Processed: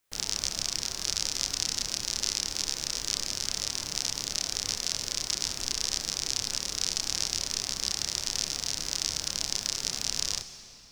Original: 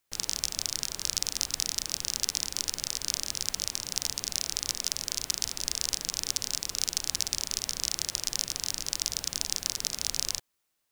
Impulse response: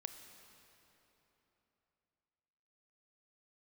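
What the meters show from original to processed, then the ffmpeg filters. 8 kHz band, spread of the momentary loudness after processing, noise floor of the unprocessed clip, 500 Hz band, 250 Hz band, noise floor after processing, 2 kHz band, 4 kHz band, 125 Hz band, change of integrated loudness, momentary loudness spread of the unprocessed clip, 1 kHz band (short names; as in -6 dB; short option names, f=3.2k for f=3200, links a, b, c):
0.0 dB, 2 LU, -78 dBFS, +2.5 dB, +2.5 dB, -45 dBFS, +2.5 dB, +1.5 dB, +2.5 dB, +0.5 dB, 2 LU, +2.5 dB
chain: -filter_complex "[0:a]acrossover=split=7800[a][b];[b]acompressor=threshold=-42dB:ratio=4:attack=1:release=60[c];[a][c]amix=inputs=2:normalize=0,asplit=2[d][e];[1:a]atrim=start_sample=2205,adelay=29[f];[e][f]afir=irnorm=-1:irlink=0,volume=2.5dB[g];[d][g]amix=inputs=2:normalize=0"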